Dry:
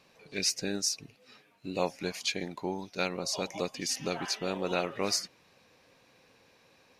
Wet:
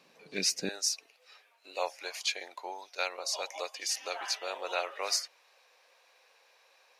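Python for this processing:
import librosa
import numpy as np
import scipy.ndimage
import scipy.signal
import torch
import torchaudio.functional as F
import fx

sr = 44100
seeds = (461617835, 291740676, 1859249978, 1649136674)

y = fx.highpass(x, sr, hz=fx.steps((0.0, 160.0), (0.69, 560.0)), slope=24)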